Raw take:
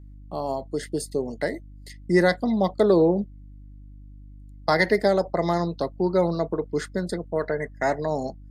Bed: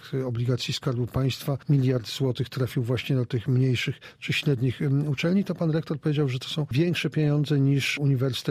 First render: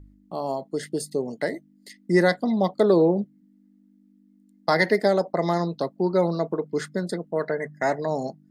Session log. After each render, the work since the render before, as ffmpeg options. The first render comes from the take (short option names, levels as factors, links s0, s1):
-af "bandreject=f=50:t=h:w=4,bandreject=f=100:t=h:w=4,bandreject=f=150:t=h:w=4"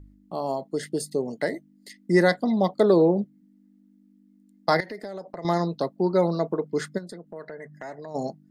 -filter_complex "[0:a]asettb=1/sr,asplit=3[s0][s1][s2];[s0]atrim=end=4.804[s3];[s1]atrim=start=4.8:end=5.45,asetpts=PTS-STARTPTS,afade=t=in:d=0.004:c=qsin,afade=t=out:st=0.646:d=0.004:c=qsin,acompressor=threshold=0.0224:ratio=6:attack=3.2:release=140:knee=1:detection=peak[s4];[s2]atrim=start=5.446[s5];[s3][s4]acrossfade=d=0.004:c1=hsin:c2=qsin[s6];[s6][s5]acrossfade=d=0.004:c1=qsin:c2=hsin,asplit=3[s7][s8][s9];[s7]afade=t=out:st=6.97:d=0.02[s10];[s8]acompressor=threshold=0.00891:ratio=2.5:attack=3.2:release=140:knee=1:detection=peak,afade=t=in:st=6.97:d=0.02,afade=t=out:st=8.14:d=0.02[s11];[s9]afade=t=in:st=8.14:d=0.02[s12];[s10][s11][s12]amix=inputs=3:normalize=0"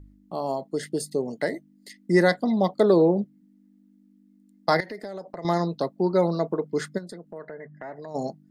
-filter_complex "[0:a]asettb=1/sr,asplit=3[s0][s1][s2];[s0]atrim=end=7.384[s3];[s1]atrim=start=7.38:end=7.96,asetpts=PTS-STARTPTS,afade=t=in:d=0.004:c=qsin,afade=t=out:st=0.576:d=0.004:c=qsin,lowpass=2200[s4];[s2]atrim=start=7.956[s5];[s3][s4]acrossfade=d=0.004:c1=hsin:c2=qsin[s6];[s6][s5]acrossfade=d=0.004:c1=qsin:c2=hsin"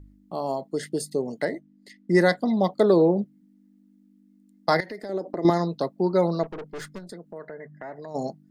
-filter_complex "[0:a]asettb=1/sr,asplit=3[s0][s1][s2];[s0]atrim=end=1.454[s3];[s1]atrim=start=1.45:end=2.15,asetpts=PTS-STARTPTS,afade=t=in:d=0.004:c=qsin,afade=t=out:st=0.696:d=0.004:c=qsin,lowpass=f=2800:p=1[s4];[s2]atrim=start=2.146[s5];[s3][s4]acrossfade=d=0.004:c1=hsin:c2=qsin[s6];[s6][s5]acrossfade=d=0.004:c1=qsin:c2=hsin,asettb=1/sr,asplit=3[s7][s8][s9];[s7]atrim=end=5.094[s10];[s8]atrim=start=5.09:end=5.5,asetpts=PTS-STARTPTS,afade=t=in:d=0.004:c=qsin,afade=t=out:st=0.406:d=0.004:c=qsin,equalizer=f=320:w=1.2:g=14[s11];[s9]atrim=start=5.496[s12];[s10][s11]acrossfade=d=0.004:c1=hsin:c2=qsin[s13];[s13][s12]acrossfade=d=0.004:c1=qsin:c2=hsin,asettb=1/sr,asplit=3[s14][s15][s16];[s14]atrim=end=6.434[s17];[s15]atrim=start=6.43:end=7.1,asetpts=PTS-STARTPTS,afade=t=in:d=0.004:c=qsin,afade=t=out:st=0.666:d=0.004:c=qsin,aeval=exprs='(tanh(44.7*val(0)+0.4)-tanh(0.4))/44.7':c=same[s18];[s16]atrim=start=7.096[s19];[s17][s18]acrossfade=d=0.004:c1=hsin:c2=qsin[s20];[s20][s19]acrossfade=d=0.004:c1=qsin:c2=hsin"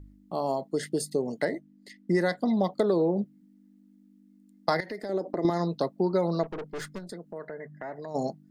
-af "acompressor=threshold=0.0891:ratio=6"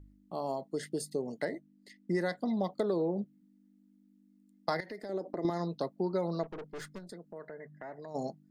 -af "volume=0.473"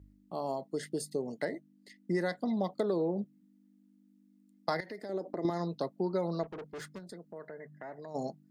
-af "highpass=44"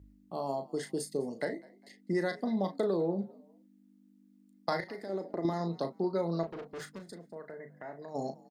-filter_complex "[0:a]asplit=2[s0][s1];[s1]adelay=36,volume=0.376[s2];[s0][s2]amix=inputs=2:normalize=0,asplit=3[s3][s4][s5];[s4]adelay=203,afreqshift=56,volume=0.0668[s6];[s5]adelay=406,afreqshift=112,volume=0.0234[s7];[s3][s6][s7]amix=inputs=3:normalize=0"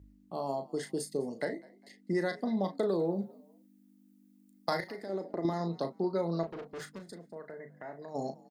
-filter_complex "[0:a]asettb=1/sr,asplit=3[s0][s1][s2];[s0]atrim=end=2.894[s3];[s1]atrim=start=2.89:end=4.92,asetpts=PTS-STARTPTS,afade=t=in:d=0.004:c=qsin,afade=t=out:st=2.026:d=0.004:c=qsin,highshelf=f=8300:g=12[s4];[s2]atrim=start=4.916[s5];[s3][s4]acrossfade=d=0.004:c1=hsin:c2=qsin[s6];[s6][s5]acrossfade=d=0.004:c1=qsin:c2=hsin"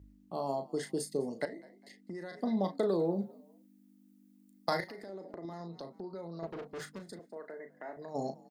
-filter_complex "[0:a]asettb=1/sr,asplit=3[s0][s1][s2];[s0]atrim=end=1.454[s3];[s1]atrim=start=1.45:end=2.39,asetpts=PTS-STARTPTS,afade=t=in:d=0.004:c=qsin,afade=t=out:st=0.936:d=0.004:c=qsin,acompressor=threshold=0.01:ratio=5:attack=3.2:release=140:knee=1:detection=peak[s4];[s2]atrim=start=2.386[s5];[s3][s4]acrossfade=d=0.004:c1=hsin:c2=qsin[s6];[s6][s5]acrossfade=d=0.004:c1=qsin:c2=hsin,asplit=3[s7][s8][s9];[s7]afade=t=out:st=4.85:d=0.02[s10];[s8]acompressor=threshold=0.00708:ratio=3:attack=3.2:release=140:knee=1:detection=peak,afade=t=in:st=4.85:d=0.02,afade=t=out:st=6.42:d=0.02[s11];[s9]afade=t=in:st=6.42:d=0.02[s12];[s10][s11][s12]amix=inputs=3:normalize=0,asettb=1/sr,asplit=3[s13][s14][s15];[s13]atrim=end=7.194[s16];[s14]atrim=start=7.19:end=7.97,asetpts=PTS-STARTPTS,afade=t=in:d=0.004:c=qsin,afade=t=out:st=0.776:d=0.004:c=qsin,highpass=f=220:w=0.5412,highpass=f=220:w=1.3066[s17];[s15]atrim=start=7.966[s18];[s16][s17]acrossfade=d=0.004:c1=hsin:c2=qsin[s19];[s19][s18]acrossfade=d=0.004:c1=qsin:c2=hsin"